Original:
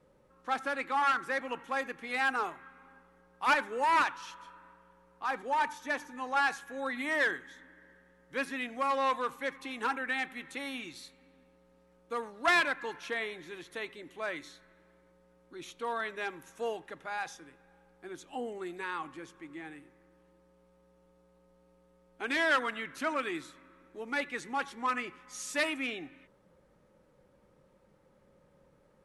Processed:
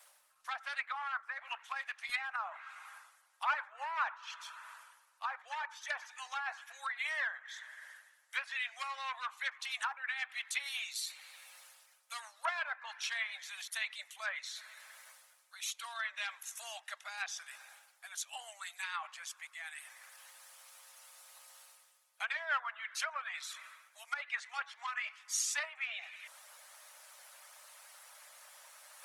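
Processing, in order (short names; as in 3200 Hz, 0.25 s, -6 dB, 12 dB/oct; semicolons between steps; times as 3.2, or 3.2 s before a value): harmonic-percussive split harmonic -11 dB; elliptic high-pass 620 Hz, stop band 40 dB; treble ducked by the level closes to 1100 Hz, closed at -34 dBFS; differentiator; reverse; upward compressor, threshold -58 dBFS; reverse; gain +16.5 dB; Opus 20 kbps 48000 Hz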